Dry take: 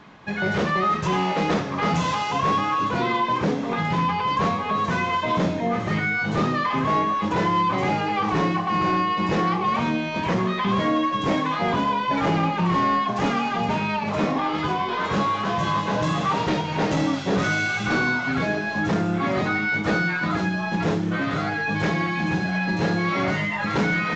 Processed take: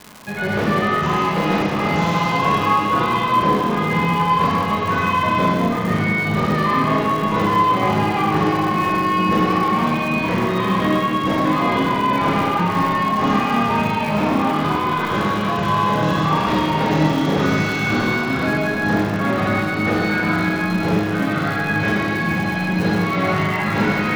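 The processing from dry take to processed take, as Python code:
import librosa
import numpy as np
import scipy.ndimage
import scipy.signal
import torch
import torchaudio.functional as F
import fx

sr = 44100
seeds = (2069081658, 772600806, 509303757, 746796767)

y = fx.air_absorb(x, sr, metres=83.0)
y = fx.rev_schroeder(y, sr, rt60_s=2.2, comb_ms=26, drr_db=-4.0)
y = fx.dmg_crackle(y, sr, seeds[0], per_s=260.0, level_db=-26.0)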